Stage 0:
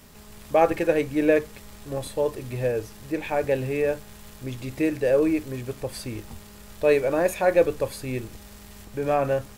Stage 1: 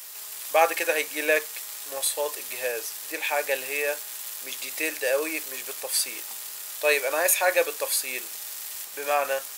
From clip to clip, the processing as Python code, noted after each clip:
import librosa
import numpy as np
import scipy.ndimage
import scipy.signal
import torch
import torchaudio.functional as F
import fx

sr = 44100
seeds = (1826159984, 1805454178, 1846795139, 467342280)

y = scipy.signal.sosfilt(scipy.signal.butter(2, 560.0, 'highpass', fs=sr, output='sos'), x)
y = fx.tilt_eq(y, sr, slope=4.0)
y = y * librosa.db_to_amplitude(2.5)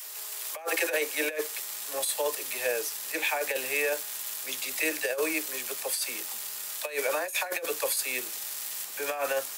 y = fx.dispersion(x, sr, late='lows', ms=44.0, hz=400.0)
y = fx.over_compress(y, sr, threshold_db=-26.0, ratio=-0.5)
y = fx.filter_sweep_highpass(y, sr, from_hz=370.0, to_hz=140.0, start_s=1.36, end_s=2.02, q=1.4)
y = y * librosa.db_to_amplitude(-2.0)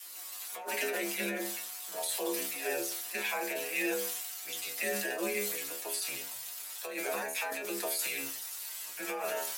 y = x * np.sin(2.0 * np.pi * 98.0 * np.arange(len(x)) / sr)
y = fx.stiff_resonator(y, sr, f0_hz=67.0, decay_s=0.43, stiffness=0.002)
y = fx.sustainer(y, sr, db_per_s=27.0)
y = y * librosa.db_to_amplitude(6.5)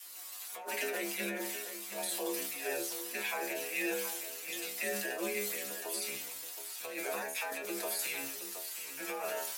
y = x + 10.0 ** (-10.5 / 20.0) * np.pad(x, (int(721 * sr / 1000.0), 0))[:len(x)]
y = y * librosa.db_to_amplitude(-2.5)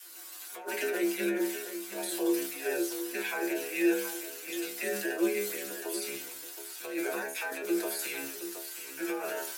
y = fx.small_body(x, sr, hz=(350.0, 1500.0), ring_ms=40, db=13)